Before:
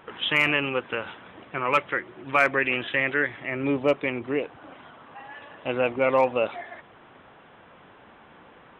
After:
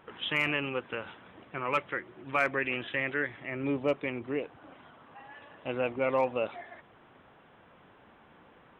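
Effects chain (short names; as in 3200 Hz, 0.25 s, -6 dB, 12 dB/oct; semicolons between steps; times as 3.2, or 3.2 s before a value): low shelf 320 Hz +3.5 dB; gain -7.5 dB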